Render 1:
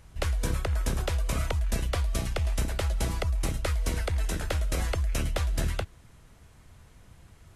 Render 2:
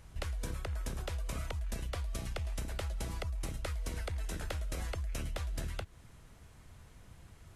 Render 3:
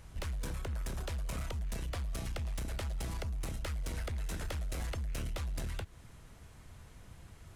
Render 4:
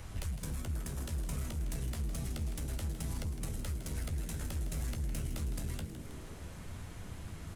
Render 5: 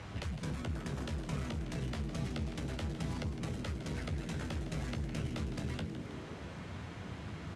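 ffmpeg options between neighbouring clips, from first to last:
-af "acompressor=threshold=0.0224:ratio=5,volume=0.794"
-af "volume=59.6,asoftclip=hard,volume=0.0168,volume=1.26"
-filter_complex "[0:a]acrossover=split=190|6600[s0][s1][s2];[s0]acompressor=threshold=0.00631:ratio=4[s3];[s1]acompressor=threshold=0.00126:ratio=4[s4];[s2]acompressor=threshold=0.002:ratio=4[s5];[s3][s4][s5]amix=inputs=3:normalize=0,flanger=delay=9.5:depth=7.4:regen=-43:speed=0.29:shape=triangular,asplit=8[s6][s7][s8][s9][s10][s11][s12][s13];[s7]adelay=159,afreqshift=85,volume=0.282[s14];[s8]adelay=318,afreqshift=170,volume=0.166[s15];[s9]adelay=477,afreqshift=255,volume=0.0977[s16];[s10]adelay=636,afreqshift=340,volume=0.0582[s17];[s11]adelay=795,afreqshift=425,volume=0.0343[s18];[s12]adelay=954,afreqshift=510,volume=0.0202[s19];[s13]adelay=1113,afreqshift=595,volume=0.0119[s20];[s6][s14][s15][s16][s17][s18][s19][s20]amix=inputs=8:normalize=0,volume=3.76"
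-af "highpass=110,lowpass=4100,volume=1.78"

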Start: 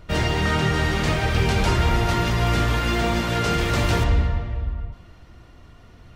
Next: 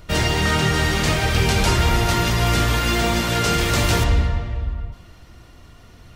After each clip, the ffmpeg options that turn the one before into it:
-af "highshelf=f=4400:g=10,volume=1.19"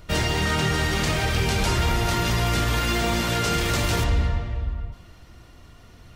-af "alimiter=limit=0.266:level=0:latency=1:release=35,volume=0.75"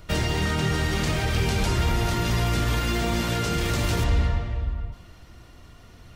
-filter_complex "[0:a]acrossover=split=430[s0][s1];[s1]acompressor=threshold=0.0447:ratio=6[s2];[s0][s2]amix=inputs=2:normalize=0"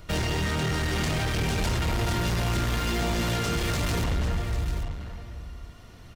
-filter_complex "[0:a]asoftclip=type=hard:threshold=0.0668,asplit=2[s0][s1];[s1]aecho=0:1:793:0.282[s2];[s0][s2]amix=inputs=2:normalize=0"

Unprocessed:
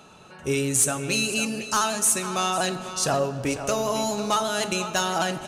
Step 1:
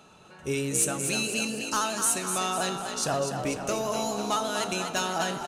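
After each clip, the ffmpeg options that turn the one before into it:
-filter_complex "[0:a]asplit=5[s0][s1][s2][s3][s4];[s1]adelay=247,afreqshift=56,volume=0.447[s5];[s2]adelay=494,afreqshift=112,volume=0.16[s6];[s3]adelay=741,afreqshift=168,volume=0.0582[s7];[s4]adelay=988,afreqshift=224,volume=0.0209[s8];[s0][s5][s6][s7][s8]amix=inputs=5:normalize=0,volume=0.596"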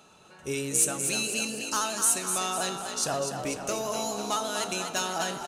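-af "bass=f=250:g=-3,treble=f=4000:g=4,volume=0.794"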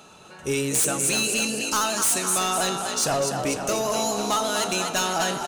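-af "aeval=exprs='0.2*sin(PI/2*2.24*val(0)/0.2)':c=same,volume=0.668"

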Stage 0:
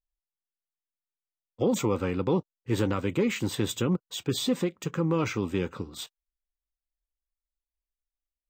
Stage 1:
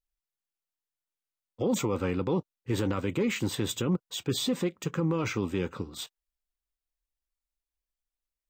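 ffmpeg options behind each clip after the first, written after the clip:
-af "alimiter=limit=0.112:level=0:latency=1:release=13"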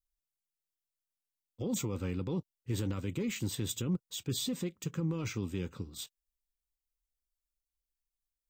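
-af "equalizer=f=900:w=0.31:g=-13"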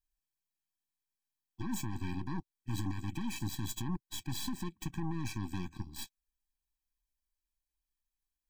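-af "acompressor=threshold=0.00708:ratio=1.5,aeval=exprs='0.0422*(cos(1*acos(clip(val(0)/0.0422,-1,1)))-cos(1*PI/2))+0.00944*(cos(8*acos(clip(val(0)/0.0422,-1,1)))-cos(8*PI/2))':c=same,afftfilt=real='re*eq(mod(floor(b*sr/1024/380),2),0)':imag='im*eq(mod(floor(b*sr/1024/380),2),0)':win_size=1024:overlap=0.75,volume=1.19"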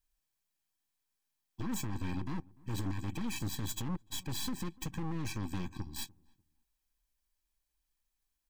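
-filter_complex "[0:a]asplit=2[s0][s1];[s1]acompressor=threshold=0.00631:ratio=6,volume=0.891[s2];[s0][s2]amix=inputs=2:normalize=0,volume=31.6,asoftclip=hard,volume=0.0316,asplit=2[s3][s4];[s4]adelay=296,lowpass=f=820:p=1,volume=0.0708,asplit=2[s5][s6];[s6]adelay=296,lowpass=f=820:p=1,volume=0.25[s7];[s3][s5][s7]amix=inputs=3:normalize=0"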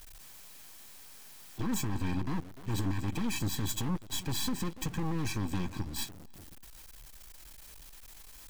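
-af "aeval=exprs='val(0)+0.5*0.00447*sgn(val(0))':c=same,volume=1.5"

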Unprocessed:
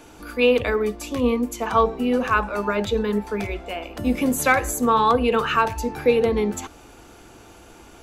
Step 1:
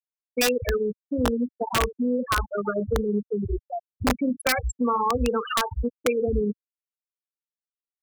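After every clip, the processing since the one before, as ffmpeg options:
-filter_complex "[0:a]afftfilt=real='re*gte(hypot(re,im),0.282)':imag='im*gte(hypot(re,im),0.282)':win_size=1024:overlap=0.75,acrossover=split=120|3000[s0][s1][s2];[s1]acompressor=threshold=0.0316:ratio=3[s3];[s0][s3][s2]amix=inputs=3:normalize=0,aeval=exprs='(mod(8.91*val(0)+1,2)-1)/8.91':c=same,volume=1.78"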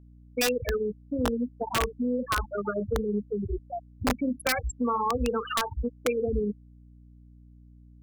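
-af "aeval=exprs='val(0)+0.00447*(sin(2*PI*60*n/s)+sin(2*PI*2*60*n/s)/2+sin(2*PI*3*60*n/s)/3+sin(2*PI*4*60*n/s)/4+sin(2*PI*5*60*n/s)/5)':c=same,volume=0.668"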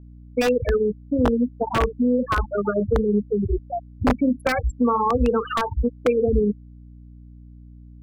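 -af "lowpass=f=1100:p=1,volume=2.66"

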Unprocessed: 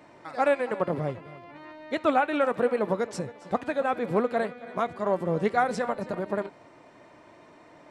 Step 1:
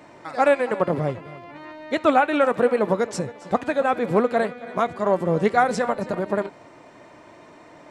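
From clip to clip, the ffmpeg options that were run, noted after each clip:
-af "equalizer=f=7000:w=2.4:g=3,volume=1.88"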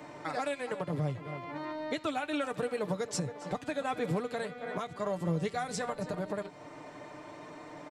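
-filter_complex "[0:a]aecho=1:1:6.7:0.48,acrossover=split=150|3000[s0][s1][s2];[s1]acompressor=threshold=0.0355:ratio=6[s3];[s0][s3][s2]amix=inputs=3:normalize=0,alimiter=limit=0.0891:level=0:latency=1:release=475,volume=0.891"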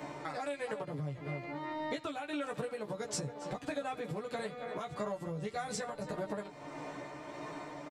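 -filter_complex "[0:a]asplit=2[s0][s1];[s1]adelay=14,volume=0.75[s2];[s0][s2]amix=inputs=2:normalize=0,acompressor=threshold=0.0158:ratio=5,tremolo=f=1.6:d=0.32,volume=1.26"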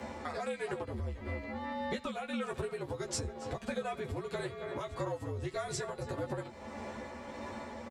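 -af "afreqshift=-64,volume=1.12"

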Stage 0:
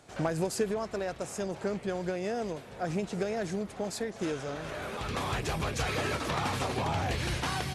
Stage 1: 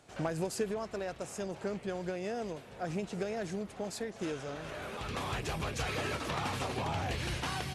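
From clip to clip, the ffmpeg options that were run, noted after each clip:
-af "equalizer=f=2800:w=4.1:g=2.5,volume=0.631"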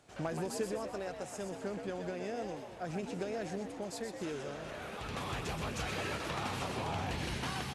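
-filter_complex "[0:a]asplit=7[s0][s1][s2][s3][s4][s5][s6];[s1]adelay=125,afreqshift=75,volume=0.447[s7];[s2]adelay=250,afreqshift=150,volume=0.219[s8];[s3]adelay=375,afreqshift=225,volume=0.107[s9];[s4]adelay=500,afreqshift=300,volume=0.0525[s10];[s5]adelay=625,afreqshift=375,volume=0.0257[s11];[s6]adelay=750,afreqshift=450,volume=0.0126[s12];[s0][s7][s8][s9][s10][s11][s12]amix=inputs=7:normalize=0,volume=0.708"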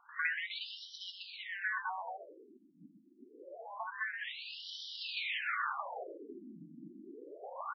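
-af "aeval=exprs='val(0)*sin(2*PI*1300*n/s)':c=same,highshelf=f=2100:g=10,afftfilt=real='re*between(b*sr/1024,230*pow(4200/230,0.5+0.5*sin(2*PI*0.26*pts/sr))/1.41,230*pow(4200/230,0.5+0.5*sin(2*PI*0.26*pts/sr))*1.41)':imag='im*between(b*sr/1024,230*pow(4200/230,0.5+0.5*sin(2*PI*0.26*pts/sr))/1.41,230*pow(4200/230,0.5+0.5*sin(2*PI*0.26*pts/sr))*1.41)':win_size=1024:overlap=0.75,volume=1.68"

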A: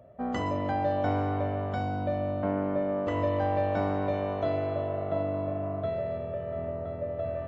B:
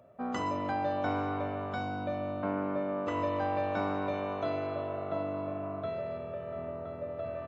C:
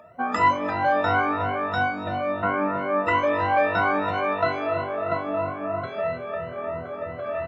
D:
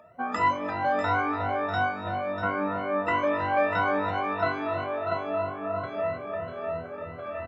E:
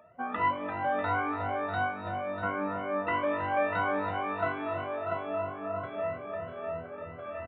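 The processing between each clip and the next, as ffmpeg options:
-af "highpass=f=350:p=1,aecho=1:1:0.8:0.34"
-af "afftfilt=real='re*pow(10,23/40*sin(2*PI*(2*log(max(b,1)*sr/1024/100)/log(2)-(3)*(pts-256)/sr)))':imag='im*pow(10,23/40*sin(2*PI*(2*log(max(b,1)*sr/1024/100)/log(2)-(3)*(pts-256)/sr)))':win_size=1024:overlap=0.75,equalizer=f=1700:t=o:w=1.9:g=11.5"
-af "aecho=1:1:644:0.398,volume=0.596"
-af "aresample=8000,aresample=44100,volume=0.631"

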